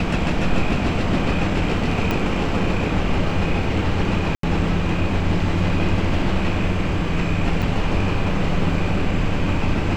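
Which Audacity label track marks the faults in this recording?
2.110000	2.110000	click −8 dBFS
4.350000	4.430000	drop-out 83 ms
7.620000	7.620000	drop-out 5 ms

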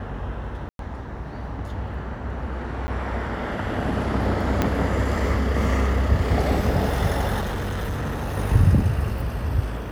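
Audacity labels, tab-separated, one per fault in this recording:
0.690000	0.790000	drop-out 102 ms
2.870000	2.880000	drop-out 10 ms
4.620000	4.620000	click −7 dBFS
7.400000	8.370000	clipping −23.5 dBFS

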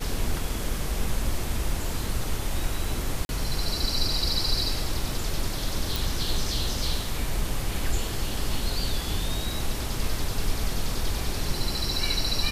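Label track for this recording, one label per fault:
3.250000	3.290000	drop-out 41 ms
5.960000	5.960000	click

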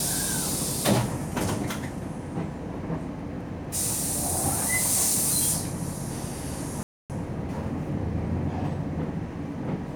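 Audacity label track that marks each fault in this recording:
6.830000	7.100000	drop-out 268 ms

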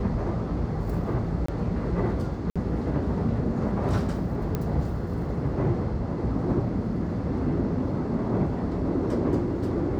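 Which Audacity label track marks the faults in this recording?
1.460000	1.480000	drop-out 24 ms
2.500000	2.560000	drop-out 56 ms
4.550000	4.550000	click −15 dBFS

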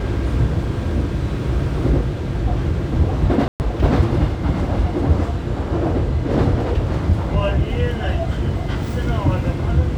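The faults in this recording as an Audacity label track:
3.480000	3.600000	drop-out 119 ms

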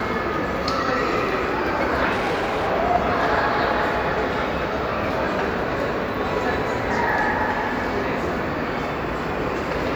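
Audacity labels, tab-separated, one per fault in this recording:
2.110000	2.680000	clipping −19 dBFS

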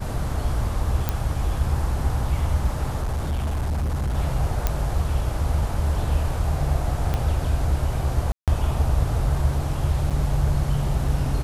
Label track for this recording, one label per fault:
1.090000	1.090000	click −8 dBFS
3.000000	4.150000	clipping −21 dBFS
4.670000	4.670000	click −7 dBFS
7.140000	7.140000	click −12 dBFS
8.320000	8.480000	drop-out 157 ms
10.100000	10.110000	drop-out 6.9 ms

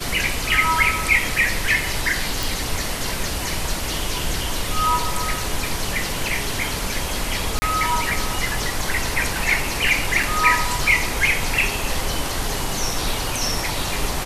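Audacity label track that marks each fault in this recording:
2.430000	2.430000	click
7.590000	7.620000	drop-out 30 ms
10.230000	10.230000	drop-out 2.8 ms

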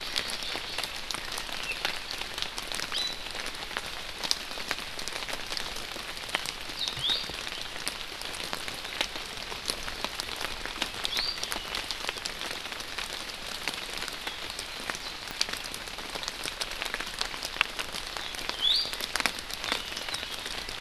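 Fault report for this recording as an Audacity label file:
15.310000	15.310000	click −17 dBFS

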